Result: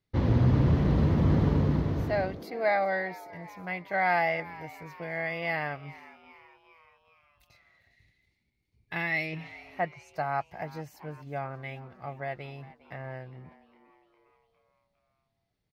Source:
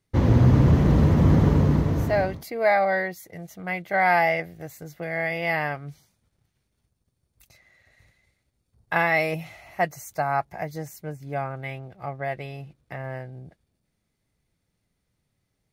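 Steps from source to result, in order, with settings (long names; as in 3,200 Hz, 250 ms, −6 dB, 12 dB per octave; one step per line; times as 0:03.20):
0:07.88–0:09.40: gain on a spectral selection 440–1,700 Hz −9 dB
0:09.25–0:10.16: treble cut that deepens with the level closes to 2,200 Hz, closed at −22.5 dBFS
high shelf with overshoot 5,700 Hz −7 dB, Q 1.5
echo with shifted repeats 406 ms, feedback 55%, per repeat +110 Hz, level −19 dB
level −6 dB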